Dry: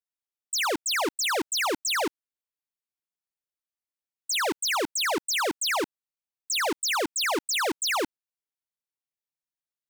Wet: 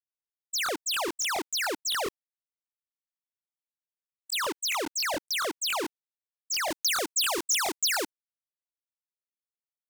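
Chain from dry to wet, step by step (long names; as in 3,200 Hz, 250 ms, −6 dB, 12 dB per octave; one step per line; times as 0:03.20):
downward expander −26 dBFS
bass and treble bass −7 dB, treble +3 dB, from 0:06.68 treble +9 dB
regular buffer underruns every 0.14 s, samples 1,024, repeat, from 0:00.64
level −2 dB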